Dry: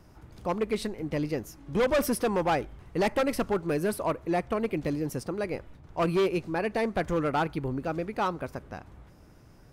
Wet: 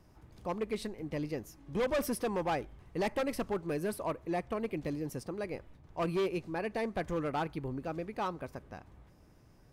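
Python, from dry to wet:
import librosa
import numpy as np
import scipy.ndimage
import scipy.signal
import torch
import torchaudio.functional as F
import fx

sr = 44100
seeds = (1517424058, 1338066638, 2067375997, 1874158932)

y = fx.notch(x, sr, hz=1400.0, q=14.0)
y = y * 10.0 ** (-6.5 / 20.0)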